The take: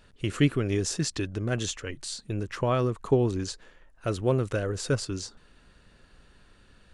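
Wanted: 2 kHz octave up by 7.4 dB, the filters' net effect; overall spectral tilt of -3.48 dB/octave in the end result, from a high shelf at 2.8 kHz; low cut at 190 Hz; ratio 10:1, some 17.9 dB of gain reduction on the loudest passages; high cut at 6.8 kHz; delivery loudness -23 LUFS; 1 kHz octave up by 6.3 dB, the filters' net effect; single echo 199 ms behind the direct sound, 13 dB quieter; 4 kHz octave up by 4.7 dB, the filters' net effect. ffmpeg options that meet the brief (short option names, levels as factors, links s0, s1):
-af "highpass=190,lowpass=6800,equalizer=f=1000:t=o:g=6,equalizer=f=2000:t=o:g=7.5,highshelf=f=2800:g=-4,equalizer=f=4000:t=o:g=7.5,acompressor=threshold=0.0178:ratio=10,aecho=1:1:199:0.224,volume=6.68"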